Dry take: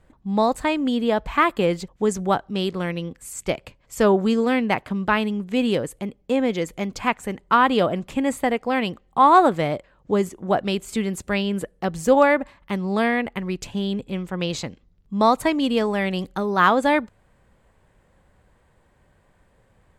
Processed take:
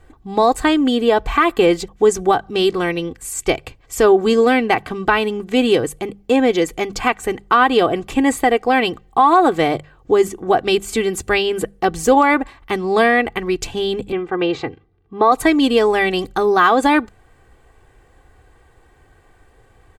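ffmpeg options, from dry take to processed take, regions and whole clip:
-filter_complex "[0:a]asettb=1/sr,asplit=3[s0][s1][s2];[s0]atrim=end=14.124[s3];[s1]atrim=start=14.12:end=15.32,asetpts=PTS-STARTPTS,afade=t=in:d=0.004:c=qsin,afade=t=out:st=1.196:d=0.004:c=qsin,highpass=110,lowpass=2300,aecho=1:1:2.5:0.39,atrim=end_sample=52920[s4];[s2]atrim=start=15.316[s5];[s3][s4]acrossfade=d=0.004:c1=hsin:c2=qsin[s6];[s6][s5]acrossfade=d=0.004:c1=qsin:c2=hsin,bandreject=f=50:t=h:w=6,bandreject=f=100:t=h:w=6,bandreject=f=150:t=h:w=6,bandreject=f=200:t=h:w=6,aecho=1:1:2.6:0.64,alimiter=limit=0.282:level=0:latency=1:release=153,volume=2.24"

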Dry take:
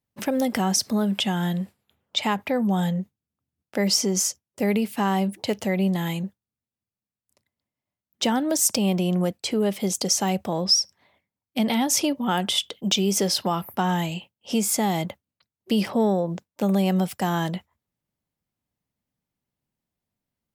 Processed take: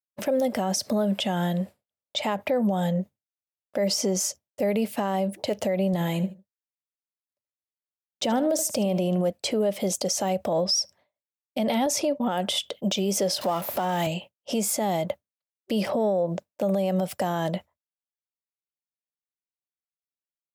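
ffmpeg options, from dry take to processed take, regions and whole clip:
-filter_complex "[0:a]asettb=1/sr,asplit=3[s0][s1][s2];[s0]atrim=end=5.934[s3];[s1]atrim=start=5.93:end=9.3,asetpts=PTS-STARTPTS,afade=t=in:d=0.004:c=qsin,afade=t=out:st=3.366:d=0.004:c=qsin,lowshelf=f=300:g=4,aecho=1:1:75|150:0.15|0.0374,atrim=end_sample=148617[s4];[s2]atrim=start=9.296[s5];[s3][s4]acrossfade=d=0.004:c1=hsin:c2=qsin[s6];[s6][s5]acrossfade=d=0.004:c1=qsin:c2=hsin,asettb=1/sr,asplit=3[s7][s8][s9];[s7]atrim=end=11.864[s10];[s8]atrim=start=11.86:end=12.32,asetpts=PTS-STARTPTS,afade=t=in:d=0.004:c=qsin,afade=t=out:st=0.456:d=0.004:c=qsin,bandreject=f=3100:w=9.8,agate=range=0.0224:threshold=0.0251:ratio=3:release=100:detection=peak,highshelf=f=9900:g=-6.5[s11];[s9]atrim=start=12.316[s12];[s10][s11]acrossfade=d=0.004:c1=hsin:c2=qsin[s13];[s13][s12]acrossfade=d=0.004:c1=qsin:c2=hsin,asettb=1/sr,asplit=3[s14][s15][s16];[s14]atrim=end=13.414[s17];[s15]atrim=start=13.41:end=14.07,asetpts=PTS-STARTPTS,afade=t=in:d=0.004:c=qsin,afade=t=out:st=0.656:d=0.004:c=qsin,aeval=exprs='val(0)+0.5*0.0299*sgn(val(0))':c=same,highpass=f=230:p=1[s18];[s16]atrim=start=14.066[s19];[s17][s18]acrossfade=d=0.004:c1=hsin:c2=qsin[s20];[s20][s19]acrossfade=d=0.004:c1=qsin:c2=hsin,agate=range=0.0224:threshold=0.00891:ratio=3:detection=peak,equalizer=f=590:t=o:w=0.53:g=13,alimiter=limit=0.15:level=0:latency=1:release=93"

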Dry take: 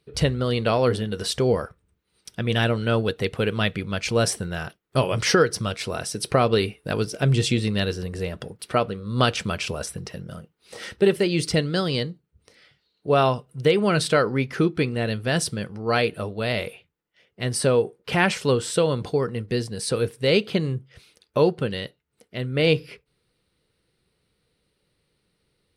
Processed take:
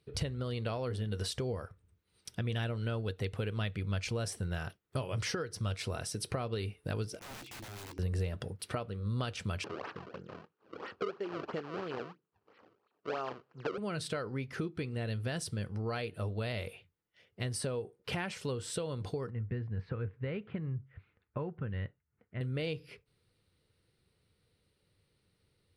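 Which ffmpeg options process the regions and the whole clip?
-filter_complex "[0:a]asettb=1/sr,asplit=3[s0][s1][s2];[s0]atrim=end=7.194[s3];[s1]atrim=start=7.19:end=7.99,asetpts=PTS-STARTPTS,afade=t=in:d=0.004:c=qsin,afade=t=out:st=0.796:d=0.004:c=qsin,asplit=3[s4][s5][s6];[s4]bandpass=f=300:t=q:w=8,volume=1[s7];[s5]bandpass=f=870:t=q:w=8,volume=0.501[s8];[s6]bandpass=f=2240:t=q:w=8,volume=0.355[s9];[s7][s8][s9]amix=inputs=3:normalize=0,aeval=exprs='(mod(75*val(0)+1,2)-1)/75':c=same,asplit=2[s10][s11];[s11]adelay=15,volume=0.224[s12];[s10][s12]amix=inputs=2:normalize=0,atrim=end_sample=35280[s13];[s2]atrim=start=7.986[s14];[s3][s13]acrossfade=d=0.004:c1=hsin:c2=qsin[s15];[s15][s14]acrossfade=d=0.004:c1=qsin:c2=hsin,asettb=1/sr,asplit=3[s16][s17][s18];[s16]atrim=end=9.644[s19];[s17]atrim=start=9.64:end=13.78,asetpts=PTS-STARTPTS,afade=t=in:d=0.004:c=qsin,afade=t=out:st=4.136:d=0.004:c=qsin,acrusher=samples=30:mix=1:aa=0.000001:lfo=1:lforange=48:lforate=3,highpass=310,equalizer=f=400:t=q:w=4:g=3,equalizer=f=630:t=q:w=4:g=-3,equalizer=f=1200:t=q:w=4:g=4,equalizer=f=2100:t=q:w=4:g=-7,equalizer=f=3600:t=q:w=4:g=-9,lowpass=f=4000:w=0.5412,lowpass=f=4000:w=1.3066[s20];[s18]atrim=start=13.776[s21];[s19][s20]acrossfade=d=0.004:c1=hsin:c2=qsin[s22];[s22][s21]acrossfade=d=0.004:c1=qsin:c2=hsin,asettb=1/sr,asplit=3[s23][s24][s25];[s23]atrim=end=19.304[s26];[s24]atrim=start=19.3:end=22.41,asetpts=PTS-STARTPTS,afade=t=in:d=0.004:c=qsin,afade=t=out:st=3.106:d=0.004:c=qsin,lowpass=f=1900:w=0.5412,lowpass=f=1900:w=1.3066,equalizer=f=480:w=0.64:g=-9[s27];[s25]atrim=start=22.406[s28];[s26][s27]acrossfade=d=0.004:c1=hsin:c2=qsin[s29];[s29][s28]acrossfade=d=0.004:c1=qsin:c2=hsin,acompressor=threshold=0.0282:ratio=4,equalizer=f=95:t=o:w=0.56:g=10.5,volume=0.562"

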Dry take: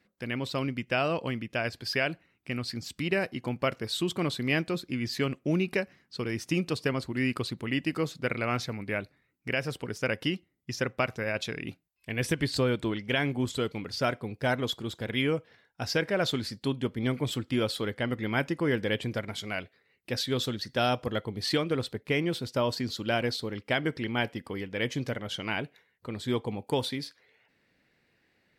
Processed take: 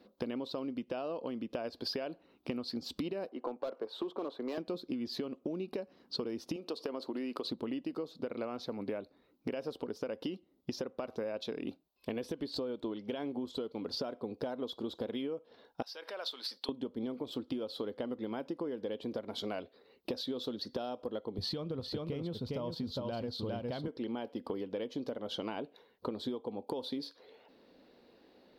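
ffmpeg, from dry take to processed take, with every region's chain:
-filter_complex "[0:a]asettb=1/sr,asplit=3[s0][s1][s2];[s0]atrim=end=3.294[s3];[s1]atrim=start=3.29:end=4.58,asetpts=PTS-STARTPTS,afade=t=in:d=0.004:c=qsin,afade=t=out:st=1.286:d=0.004:c=qsin,acrossover=split=340 2200:gain=0.1 1 0.112[s4][s5][s6];[s4][s5][s6]amix=inputs=3:normalize=0,asoftclip=type=hard:threshold=0.0299[s7];[s2]atrim=start=4.576[s8];[s3][s7]acrossfade=d=0.004:c1=hsin:c2=qsin[s9];[s9][s8]acrossfade=d=0.004:c1=qsin:c2=hsin,asettb=1/sr,asplit=3[s10][s11][s12];[s10]atrim=end=6.564[s13];[s11]atrim=start=6.56:end=7.45,asetpts=PTS-STARTPTS,afade=t=in:d=0.004:c=qsin,afade=t=out:st=0.886:d=0.004:c=qsin,highpass=310,acompressor=threshold=0.0178:ratio=2.5:attack=3.2:release=140:knee=1:detection=peak[s14];[s12]atrim=start=7.446[s15];[s13][s14]acrossfade=d=0.004:c1=hsin:c2=qsin[s16];[s16][s15]acrossfade=d=0.004:c1=qsin:c2=hsin,asettb=1/sr,asplit=3[s17][s18][s19];[s17]atrim=end=15.824[s20];[s18]atrim=start=15.82:end=16.69,asetpts=PTS-STARTPTS,afade=t=in:d=0.004:c=qsin,afade=t=out:st=0.866:d=0.004:c=qsin,bandreject=f=6800:w=7.4,acompressor=threshold=0.0141:ratio=6:attack=3.2:release=140:knee=1:detection=peak,highpass=1200[s21];[s19]atrim=start=16.686[s22];[s20][s21]acrossfade=d=0.004:c1=hsin:c2=qsin[s23];[s23][s22]acrossfade=d=0.004:c1=qsin:c2=hsin,asettb=1/sr,asplit=3[s24][s25][s26];[s24]atrim=end=21.384[s27];[s25]atrim=start=21.38:end=23.88,asetpts=PTS-STARTPTS,afade=t=in:d=0.004:c=qsin,afade=t=out:st=2.496:d=0.004:c=qsin,lowshelf=f=200:t=q:w=1.5:g=13.5,aecho=1:1:407:0.562,atrim=end_sample=110250[s28];[s26]atrim=start=23.876[s29];[s27][s28]acrossfade=d=0.004:c1=hsin:c2=qsin[s30];[s30][s29]acrossfade=d=0.004:c1=qsin:c2=hsin,equalizer=f=125:t=o:w=1:g=-11,equalizer=f=250:t=o:w=1:g=9,equalizer=f=500:t=o:w=1:g=9,equalizer=f=1000:t=o:w=1:g=7,equalizer=f=2000:t=o:w=1:g=-12,equalizer=f=4000:t=o:w=1:g=9,equalizer=f=8000:t=o:w=1:g=-11,alimiter=limit=0.15:level=0:latency=1:release=296,acompressor=threshold=0.0126:ratio=12,volume=1.5"

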